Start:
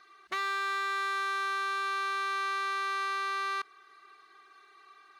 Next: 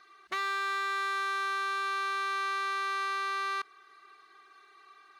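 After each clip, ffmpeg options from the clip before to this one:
-af anull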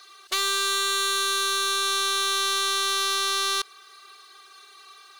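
-af "aeval=exprs='(tanh(35.5*val(0)+0.55)-tanh(0.55))/35.5':c=same,lowshelf=f=320:t=q:w=1.5:g=-9,aexciter=amount=5.4:drive=3.5:freq=2.9k,volume=7dB"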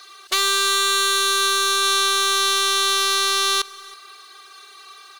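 -af "aecho=1:1:324:0.0794,volume=5.5dB"

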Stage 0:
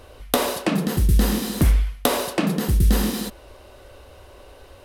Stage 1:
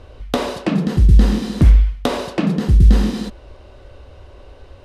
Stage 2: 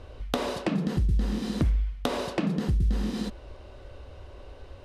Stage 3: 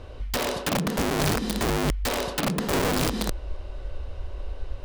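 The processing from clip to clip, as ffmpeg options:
-af "lowpass=5.7k,lowshelf=f=270:g=9,volume=-1dB"
-af "acompressor=threshold=-21dB:ratio=3,volume=-4dB"
-af "asubboost=boost=5.5:cutoff=57,aeval=exprs='(mod(13.3*val(0)+1,2)-1)/13.3':c=same,volume=3.5dB"

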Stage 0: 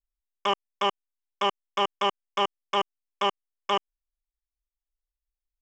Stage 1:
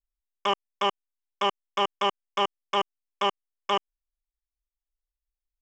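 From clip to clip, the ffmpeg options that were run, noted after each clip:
-af anull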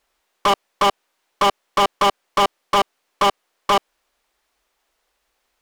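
-filter_complex "[0:a]equalizer=f=480:w=0.53:g=6,asplit=2[a][b];[b]highpass=f=720:p=1,volume=37dB,asoftclip=type=tanh:threshold=-8.5dB[c];[a][c]amix=inputs=2:normalize=0,lowpass=f=2.8k:p=1,volume=-6dB"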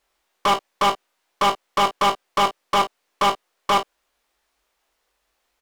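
-af "aecho=1:1:21|39|52:0.501|0.251|0.168,volume=-2.5dB"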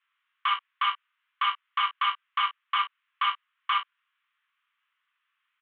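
-filter_complex "[0:a]asplit=2[a][b];[b]asoftclip=type=tanh:threshold=-21.5dB,volume=-6dB[c];[a][c]amix=inputs=2:normalize=0,asuperpass=centerf=1900:order=12:qfactor=0.84,volume=-5dB"

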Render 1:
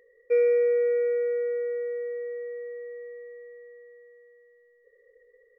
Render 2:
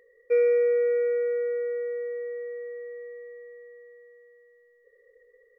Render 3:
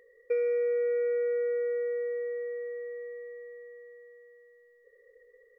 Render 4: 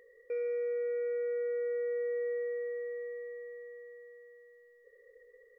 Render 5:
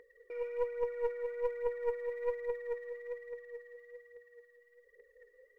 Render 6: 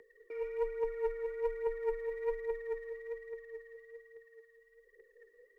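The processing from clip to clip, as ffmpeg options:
-af "equalizer=f=1.3k:t=o:w=0.75:g=3.5"
-af "acompressor=threshold=-26dB:ratio=6"
-af "alimiter=level_in=5.5dB:limit=-24dB:level=0:latency=1,volume=-5.5dB"
-af "aphaser=in_gain=1:out_gain=1:delay=4:decay=0.66:speed=1.2:type=triangular,aeval=exprs='0.1*(cos(1*acos(clip(val(0)/0.1,-1,1)))-cos(1*PI/2))+0.0282*(cos(2*acos(clip(val(0)/0.1,-1,1)))-cos(2*PI/2))+0.000708*(cos(8*acos(clip(val(0)/0.1,-1,1)))-cos(8*PI/2))':c=same,volume=-4.5dB"
-af "afreqshift=-25"

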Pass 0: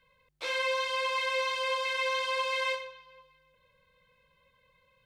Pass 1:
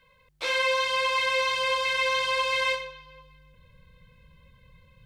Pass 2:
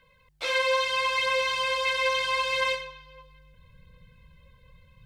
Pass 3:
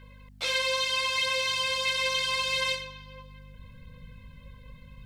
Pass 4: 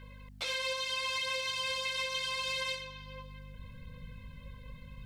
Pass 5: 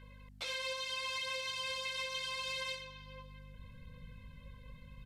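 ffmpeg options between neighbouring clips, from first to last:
-af "asubboost=boost=7:cutoff=240,volume=6dB"
-af "aphaser=in_gain=1:out_gain=1:delay=2.2:decay=0.3:speed=0.76:type=triangular,volume=-1dB"
-filter_complex "[0:a]acrossover=split=200|3000[a][b][c];[b]acompressor=threshold=-57dB:ratio=1.5[d];[a][d][c]amix=inputs=3:normalize=0,aeval=exprs='val(0)+0.002*(sin(2*PI*50*n/s)+sin(2*PI*2*50*n/s)/2+sin(2*PI*3*50*n/s)/3+sin(2*PI*4*50*n/s)/4+sin(2*PI*5*50*n/s)/5)':c=same,volume=5dB"
-af "alimiter=level_in=1.5dB:limit=-24dB:level=0:latency=1:release=391,volume=-1.5dB"
-af "aresample=32000,aresample=44100,volume=-4.5dB"

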